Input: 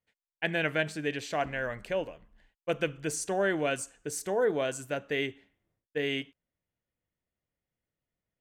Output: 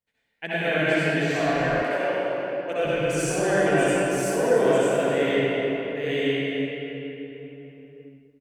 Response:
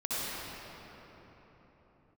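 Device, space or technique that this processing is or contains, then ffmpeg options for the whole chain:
cave: -filter_complex "[0:a]aecho=1:1:288:0.2[link_01];[1:a]atrim=start_sample=2205[link_02];[link_01][link_02]afir=irnorm=-1:irlink=0,asettb=1/sr,asplit=3[link_03][link_04][link_05];[link_03]atrim=end=1.834[link_06];[link_04]atrim=start=1.83:end=2.85,asetpts=PTS-STARTPTS,afade=type=in:duration=0.004:curve=qsin,afade=type=out:start_time=1.016:duration=0.004:curve=qsin,highpass=280[link_07];[link_05]atrim=start=2.846[link_08];[link_06][link_07]acrossfade=duration=0.004:curve1=hsin:curve2=qsin[link_09];[link_09][link_08]acrossfade=duration=0.004:curve1=qsin:curve2=hsin"

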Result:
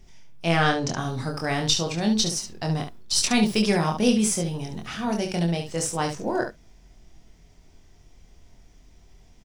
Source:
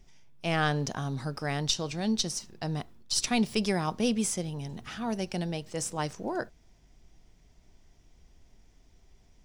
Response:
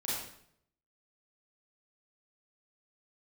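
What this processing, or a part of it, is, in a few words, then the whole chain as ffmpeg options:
slapback doubling: -filter_complex "[0:a]asettb=1/sr,asplit=3[link_01][link_02][link_03];[link_01]atrim=end=0.574[link_04];[link_02]atrim=start=0.57:end=0.98,asetpts=PTS-STARTPTS,afade=type=in:duration=0.004:curve=qsin,afade=type=out:start_time=0.406:duration=0.004:curve=qsin,lowpass=frequency=9000:width=0.5412,lowpass=frequency=9000:width=1.3066[link_05];[link_03]atrim=start=0.976[link_06];[link_04][link_05]acrossfade=duration=0.004:curve1=hsin:curve2=qsin[link_07];[link_07][link_06]acrossfade=duration=0.004:curve1=qsin:curve2=hsin,asplit=3[link_08][link_09][link_10];[link_09]adelay=24,volume=-3.5dB[link_11];[link_10]adelay=70,volume=-7.5dB[link_12];[link_08][link_11][link_12]amix=inputs=3:normalize=0,volume=4.5dB"

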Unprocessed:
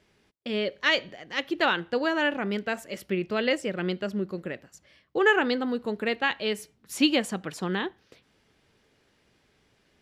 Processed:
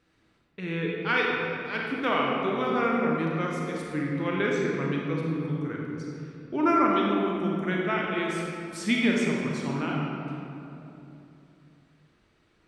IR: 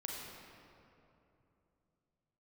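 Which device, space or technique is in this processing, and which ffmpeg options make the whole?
slowed and reverbed: -filter_complex "[0:a]asetrate=34839,aresample=44100[link_01];[1:a]atrim=start_sample=2205[link_02];[link_01][link_02]afir=irnorm=-1:irlink=0"

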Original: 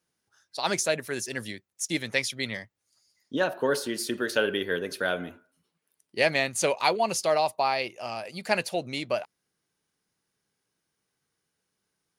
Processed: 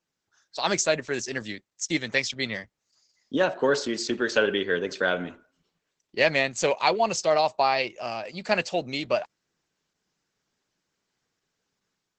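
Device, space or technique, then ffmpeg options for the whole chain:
video call: -af "highpass=110,dynaudnorm=framelen=290:gausssize=3:maxgain=5dB,volume=-1.5dB" -ar 48000 -c:a libopus -b:a 12k

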